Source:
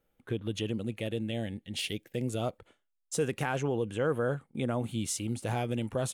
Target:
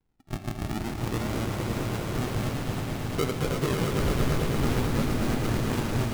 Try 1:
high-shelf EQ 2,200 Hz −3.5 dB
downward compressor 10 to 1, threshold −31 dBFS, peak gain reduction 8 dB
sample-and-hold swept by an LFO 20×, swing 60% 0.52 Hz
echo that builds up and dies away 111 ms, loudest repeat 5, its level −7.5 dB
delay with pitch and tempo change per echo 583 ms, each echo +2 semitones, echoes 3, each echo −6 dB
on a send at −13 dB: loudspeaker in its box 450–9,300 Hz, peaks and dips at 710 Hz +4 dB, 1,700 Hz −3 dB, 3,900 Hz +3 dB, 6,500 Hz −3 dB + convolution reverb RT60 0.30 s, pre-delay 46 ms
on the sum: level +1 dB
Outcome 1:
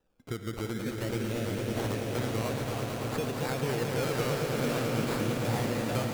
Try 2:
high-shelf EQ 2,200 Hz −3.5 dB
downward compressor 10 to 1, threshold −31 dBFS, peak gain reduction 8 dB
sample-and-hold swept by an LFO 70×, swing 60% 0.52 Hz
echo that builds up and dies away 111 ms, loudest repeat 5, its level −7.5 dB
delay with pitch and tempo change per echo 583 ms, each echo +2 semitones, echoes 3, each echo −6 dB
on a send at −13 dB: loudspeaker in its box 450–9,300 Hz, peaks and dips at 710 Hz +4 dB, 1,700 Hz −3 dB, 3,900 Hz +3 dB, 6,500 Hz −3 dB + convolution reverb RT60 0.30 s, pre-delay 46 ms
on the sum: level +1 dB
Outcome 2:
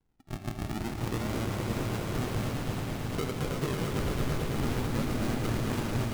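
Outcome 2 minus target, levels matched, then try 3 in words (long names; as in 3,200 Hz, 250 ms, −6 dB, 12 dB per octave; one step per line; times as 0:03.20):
downward compressor: peak gain reduction +8 dB
high-shelf EQ 2,200 Hz −3.5 dB
sample-and-hold swept by an LFO 70×, swing 60% 0.52 Hz
echo that builds up and dies away 111 ms, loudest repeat 5, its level −7.5 dB
delay with pitch and tempo change per echo 583 ms, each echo +2 semitones, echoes 3, each echo −6 dB
on a send at −13 dB: loudspeaker in its box 450–9,300 Hz, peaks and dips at 710 Hz +4 dB, 1,700 Hz −3 dB, 3,900 Hz +3 dB, 6,500 Hz −3 dB + convolution reverb RT60 0.30 s, pre-delay 46 ms
on the sum: level +1 dB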